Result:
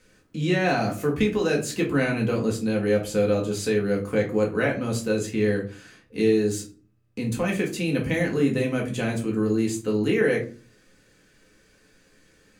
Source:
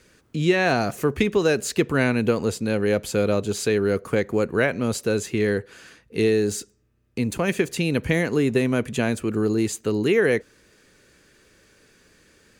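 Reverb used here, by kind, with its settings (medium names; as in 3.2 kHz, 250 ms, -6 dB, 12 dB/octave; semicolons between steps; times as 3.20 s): simulated room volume 200 m³, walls furnished, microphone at 2 m; trim -6.5 dB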